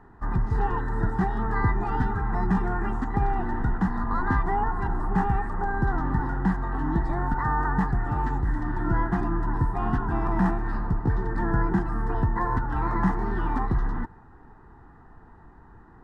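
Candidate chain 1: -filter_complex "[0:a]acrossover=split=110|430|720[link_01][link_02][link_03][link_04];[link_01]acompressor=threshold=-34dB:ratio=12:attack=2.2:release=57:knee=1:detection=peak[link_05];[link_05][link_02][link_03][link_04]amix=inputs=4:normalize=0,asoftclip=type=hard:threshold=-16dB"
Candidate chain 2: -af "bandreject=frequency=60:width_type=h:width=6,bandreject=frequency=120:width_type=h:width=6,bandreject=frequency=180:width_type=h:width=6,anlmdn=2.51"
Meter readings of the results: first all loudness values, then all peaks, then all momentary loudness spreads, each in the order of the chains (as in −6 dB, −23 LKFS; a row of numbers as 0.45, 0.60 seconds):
−29.0, −27.5 LKFS; −16.0, −11.0 dBFS; 5, 3 LU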